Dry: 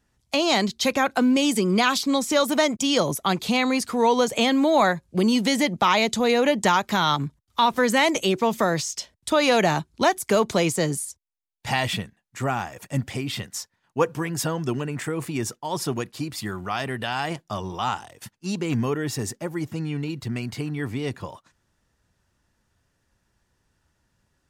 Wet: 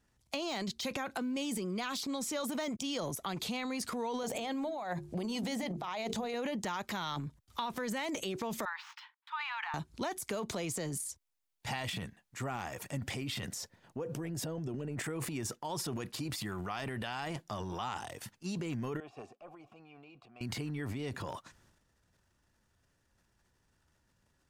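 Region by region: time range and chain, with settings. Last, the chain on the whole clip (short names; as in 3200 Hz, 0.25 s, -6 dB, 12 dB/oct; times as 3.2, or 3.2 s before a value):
4.23–6.34 bell 730 Hz +8.5 dB 0.58 oct + negative-ratio compressor -21 dBFS, ratio -0.5 + notches 50/100/150/200/250/300/350/400/450 Hz
8.65–9.74 median filter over 5 samples + steep high-pass 850 Hz 96 dB/oct + air absorption 490 m
13.48–15.02 resonant low shelf 780 Hz +6.5 dB, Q 1.5 + compressor 3:1, threshold -31 dBFS
19–20.41 de-esser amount 95% + vowel filter a + tube stage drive 28 dB, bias 0.45
whole clip: de-esser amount 50%; transient shaper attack -2 dB, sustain +10 dB; compressor 5:1, threshold -30 dBFS; gain -5 dB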